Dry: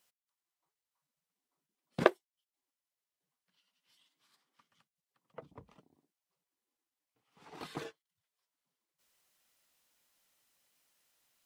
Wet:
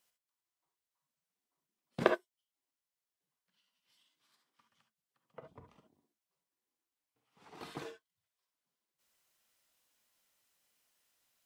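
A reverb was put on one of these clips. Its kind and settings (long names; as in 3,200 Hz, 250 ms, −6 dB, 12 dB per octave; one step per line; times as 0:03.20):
reverb whose tail is shaped and stops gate 90 ms rising, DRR 5.5 dB
level −3 dB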